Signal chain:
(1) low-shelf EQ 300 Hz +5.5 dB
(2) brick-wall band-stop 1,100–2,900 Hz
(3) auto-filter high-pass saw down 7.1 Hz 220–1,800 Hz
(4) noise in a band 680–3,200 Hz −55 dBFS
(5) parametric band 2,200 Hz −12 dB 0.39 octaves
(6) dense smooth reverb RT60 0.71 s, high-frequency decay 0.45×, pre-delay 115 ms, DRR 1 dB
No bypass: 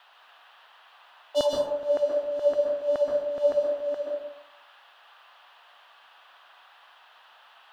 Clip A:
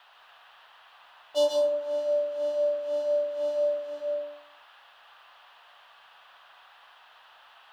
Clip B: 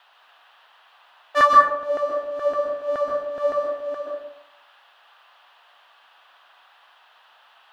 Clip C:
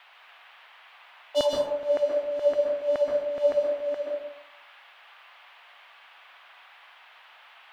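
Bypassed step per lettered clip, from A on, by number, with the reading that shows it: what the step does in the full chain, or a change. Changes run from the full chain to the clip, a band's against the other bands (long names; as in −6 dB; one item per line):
3, 4 kHz band +3.0 dB
2, 1 kHz band +21.0 dB
5, 2 kHz band +3.5 dB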